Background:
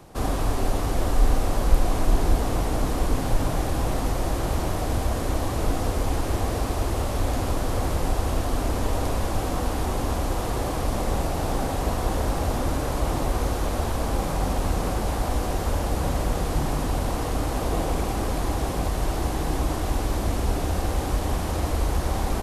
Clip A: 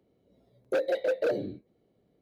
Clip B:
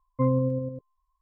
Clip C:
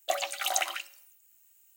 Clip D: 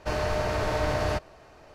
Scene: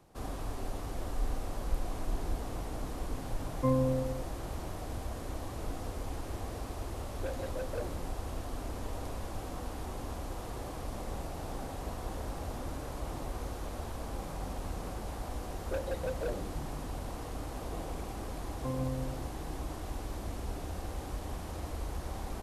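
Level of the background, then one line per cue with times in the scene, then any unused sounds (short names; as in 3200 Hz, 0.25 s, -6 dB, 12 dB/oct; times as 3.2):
background -14 dB
3.44 add B -3 dB + low shelf 150 Hz -5.5 dB
6.51 add A -12.5 dB
14.99 add A -9.5 dB
18.45 add B -13.5 dB + echo 0.138 s -6 dB
not used: C, D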